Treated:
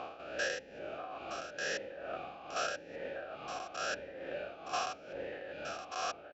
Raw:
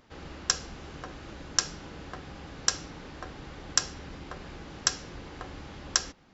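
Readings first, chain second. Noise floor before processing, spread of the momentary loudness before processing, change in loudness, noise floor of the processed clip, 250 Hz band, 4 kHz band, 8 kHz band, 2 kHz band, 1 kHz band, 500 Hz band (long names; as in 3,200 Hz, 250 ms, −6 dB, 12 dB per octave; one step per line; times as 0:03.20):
−51 dBFS, 15 LU, −8.5 dB, −53 dBFS, −7.5 dB, −11.5 dB, can't be measured, −0.5 dB, +2.0 dB, +6.0 dB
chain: spectrum averaged block by block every 200 ms
reverb reduction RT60 1.6 s
in parallel at +1 dB: brickwall limiter −32 dBFS, peak gain reduction 9.5 dB
on the sum: amplitude tremolo 2.3 Hz, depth 63%
on a send: single-tap delay 918 ms −8 dB
on the sum: formant filter swept between two vowels a-e 0.84 Hz
level +16 dB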